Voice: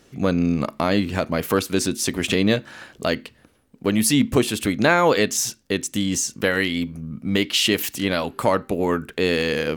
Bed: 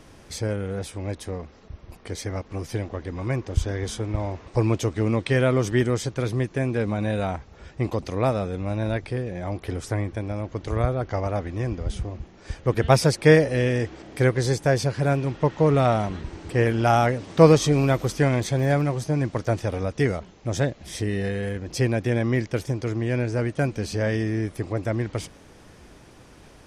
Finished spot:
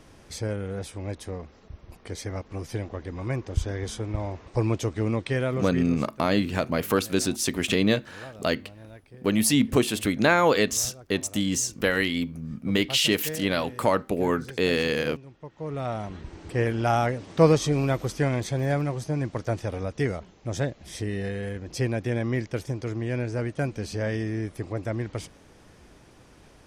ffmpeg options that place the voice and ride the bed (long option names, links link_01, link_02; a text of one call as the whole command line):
ffmpeg -i stem1.wav -i stem2.wav -filter_complex "[0:a]adelay=5400,volume=-3dB[link_01];[1:a]volume=13.5dB,afade=type=out:start_time=5.09:duration=0.98:silence=0.133352,afade=type=in:start_time=15.51:duration=0.95:silence=0.149624[link_02];[link_01][link_02]amix=inputs=2:normalize=0" out.wav